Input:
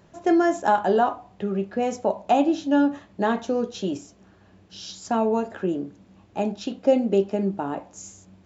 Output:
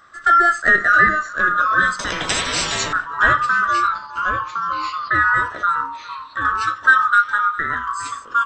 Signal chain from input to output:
neighbouring bands swapped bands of 1,000 Hz
0:03.87–0:05.15: Chebyshev low-pass with heavy ripple 4,900 Hz, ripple 3 dB
0:05.83–0:06.45: downward compressor, threshold −38 dBFS, peak gain reduction 16.5 dB
delay with pitch and tempo change per echo 634 ms, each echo −2 semitones, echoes 3, each echo −6 dB
single-tap delay 408 ms −20 dB
0:01.99–0:02.93: every bin compressed towards the loudest bin 10 to 1
level +5.5 dB

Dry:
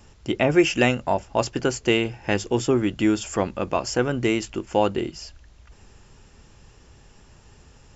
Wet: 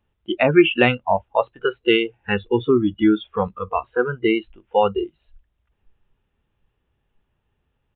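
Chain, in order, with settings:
noise reduction from a noise print of the clip's start 25 dB
downsampling to 8,000 Hz
level +4.5 dB

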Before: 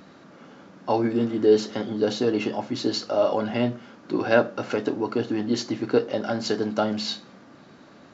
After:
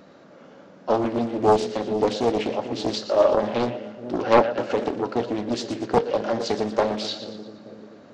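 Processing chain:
parametric band 550 Hz +8 dB 0.75 octaves
on a send: echo with a time of its own for lows and highs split 460 Hz, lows 440 ms, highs 117 ms, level −11 dB
on the sum: dynamic equaliser 3,200 Hz, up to +3 dB, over −40 dBFS, Q 1.1
highs frequency-modulated by the lows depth 0.71 ms
level −3 dB

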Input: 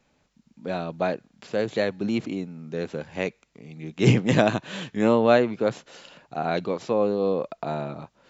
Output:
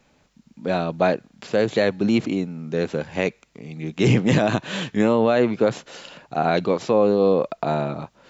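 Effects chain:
brickwall limiter −14.5 dBFS, peak gain reduction 11 dB
level +6.5 dB

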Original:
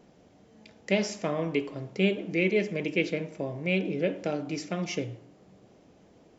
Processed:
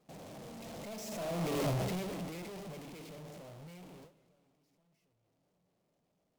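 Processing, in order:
sign of each sample alone
source passing by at 0:01.65, 18 m/s, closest 3.5 metres
noise gate with hold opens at −46 dBFS
graphic EQ with 15 bands 160 Hz +7 dB, 630 Hz +7 dB, 1,600 Hz −4 dB
feedback echo with a swinging delay time 235 ms, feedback 55%, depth 187 cents, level −20.5 dB
level −3.5 dB

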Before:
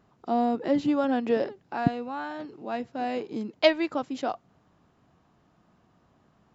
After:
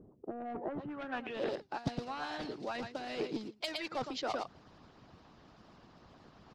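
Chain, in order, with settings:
one scale factor per block 5 bits
high-shelf EQ 6,300 Hz −4 dB
single-tap delay 114 ms −12 dB
reversed playback
downward compressor 10 to 1, threshold −36 dBFS, peak gain reduction 21.5 dB
reversed playback
low-pass filter sweep 400 Hz → 4,800 Hz, 0:00.20–0:01.60
soft clipping −32 dBFS, distortion −17 dB
harmonic and percussive parts rebalanced harmonic −14 dB
level +10 dB

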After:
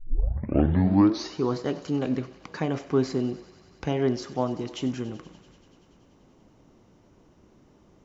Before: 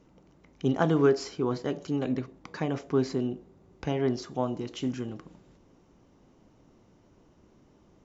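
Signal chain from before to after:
turntable start at the beginning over 1.39 s
feedback echo with a high-pass in the loop 96 ms, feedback 83%, high-pass 470 Hz, level −16.5 dB
level +2.5 dB

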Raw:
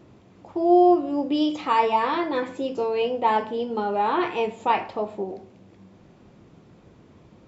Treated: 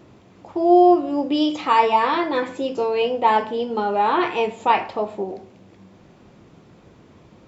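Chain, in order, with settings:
low-shelf EQ 500 Hz −3.5 dB
level +5 dB

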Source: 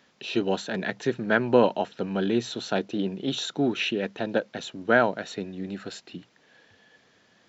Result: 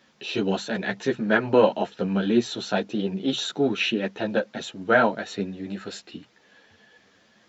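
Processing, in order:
string-ensemble chorus
level +5 dB

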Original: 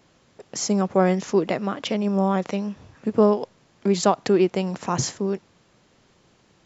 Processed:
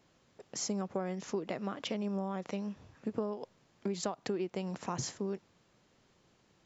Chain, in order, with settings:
downward compressor 10 to 1, threshold −22 dBFS, peak gain reduction 11.5 dB
level −9 dB

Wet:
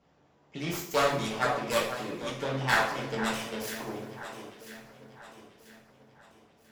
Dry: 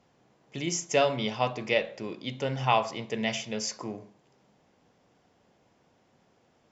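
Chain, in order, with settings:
phase distortion by the signal itself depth 0.51 ms
high-shelf EQ 5,600 Hz −9 dB
on a send: delay that swaps between a low-pass and a high-pass 495 ms, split 1,700 Hz, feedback 63%, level −9 dB
on the sum: coupled-rooms reverb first 0.52 s, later 3.1 s, from −20 dB, DRR −4 dB
harmonic and percussive parts rebalanced harmonic −4 dB
level −2 dB

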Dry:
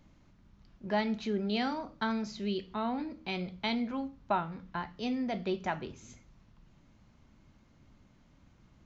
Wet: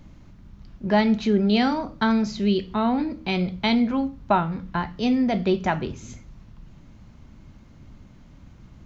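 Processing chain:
low-shelf EQ 240 Hz +7 dB
level +9 dB

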